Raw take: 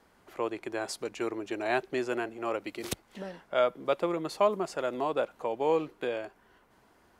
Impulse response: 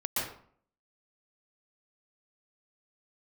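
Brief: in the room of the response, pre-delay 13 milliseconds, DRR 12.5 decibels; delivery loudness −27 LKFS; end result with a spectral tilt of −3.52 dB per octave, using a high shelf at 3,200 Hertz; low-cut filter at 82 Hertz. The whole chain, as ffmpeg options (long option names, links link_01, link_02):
-filter_complex "[0:a]highpass=82,highshelf=frequency=3200:gain=-3.5,asplit=2[link_01][link_02];[1:a]atrim=start_sample=2205,adelay=13[link_03];[link_02][link_03]afir=irnorm=-1:irlink=0,volume=-20dB[link_04];[link_01][link_04]amix=inputs=2:normalize=0,volume=4.5dB"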